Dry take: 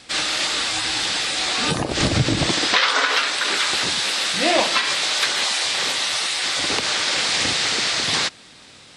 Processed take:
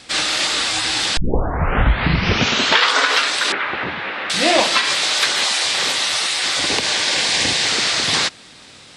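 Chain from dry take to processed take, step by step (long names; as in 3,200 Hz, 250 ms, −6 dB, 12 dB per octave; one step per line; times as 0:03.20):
0:01.17: tape start 1.78 s
0:03.52–0:04.30: low-pass filter 2,300 Hz 24 dB per octave
0:06.67–0:07.69: notch filter 1,300 Hz, Q 5.7
level +3 dB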